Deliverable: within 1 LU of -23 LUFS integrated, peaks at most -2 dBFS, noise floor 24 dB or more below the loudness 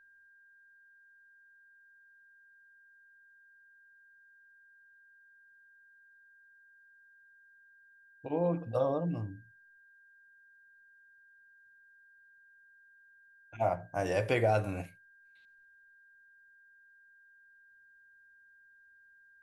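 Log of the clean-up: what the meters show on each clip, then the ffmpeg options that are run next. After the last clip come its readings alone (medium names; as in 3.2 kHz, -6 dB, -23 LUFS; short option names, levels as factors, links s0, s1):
steady tone 1.6 kHz; tone level -59 dBFS; loudness -33.0 LUFS; peak level -16.0 dBFS; loudness target -23.0 LUFS
-> -af "bandreject=f=1600:w=30"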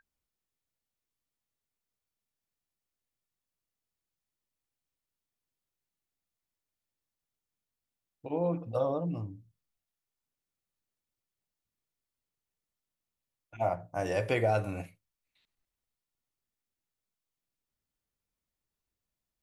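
steady tone not found; loudness -32.5 LUFS; peak level -16.0 dBFS; loudness target -23.0 LUFS
-> -af "volume=2.99"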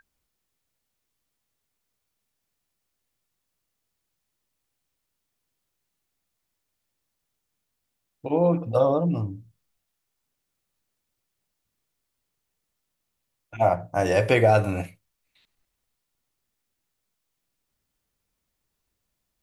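loudness -23.0 LUFS; peak level -6.5 dBFS; noise floor -81 dBFS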